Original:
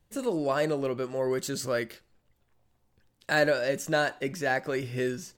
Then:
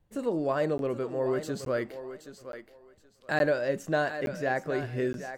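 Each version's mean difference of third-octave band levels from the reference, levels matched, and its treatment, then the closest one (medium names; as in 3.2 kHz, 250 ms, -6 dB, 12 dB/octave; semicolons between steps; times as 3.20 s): 4.5 dB: treble shelf 2.5 kHz -11.5 dB; thinning echo 774 ms, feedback 21%, high-pass 300 Hz, level -10 dB; crackling interface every 0.87 s, samples 512, zero, from 0.78 s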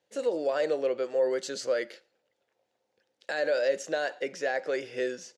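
6.0 dB: peak limiter -20.5 dBFS, peak gain reduction 8.5 dB; cabinet simulation 420–8500 Hz, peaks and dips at 510 Hz +9 dB, 1.1 kHz -8 dB, 8.2 kHz -8 dB; echo from a far wall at 19 m, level -27 dB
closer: first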